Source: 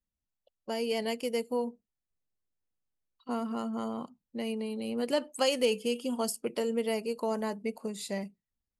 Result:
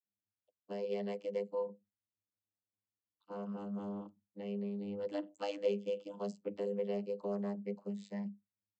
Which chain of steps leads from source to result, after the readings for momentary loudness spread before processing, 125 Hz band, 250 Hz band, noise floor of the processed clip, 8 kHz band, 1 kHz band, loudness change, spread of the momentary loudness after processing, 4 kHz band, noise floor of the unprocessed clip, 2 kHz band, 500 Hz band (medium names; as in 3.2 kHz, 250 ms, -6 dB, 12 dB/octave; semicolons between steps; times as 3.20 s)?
10 LU, no reading, -6.5 dB, under -85 dBFS, under -20 dB, -10.5 dB, -7.0 dB, 9 LU, -18.0 dB, under -85 dBFS, -14.5 dB, -6.0 dB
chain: comb 6.2 ms, depth 59%; vocoder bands 32, saw 101 Hz; trim -7 dB